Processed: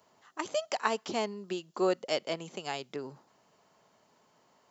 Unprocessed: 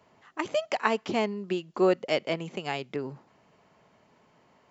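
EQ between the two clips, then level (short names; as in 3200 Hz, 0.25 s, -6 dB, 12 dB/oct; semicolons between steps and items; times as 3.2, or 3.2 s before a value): tilt +2.5 dB/oct; bell 2300 Hz -8 dB 1 oct; -2.0 dB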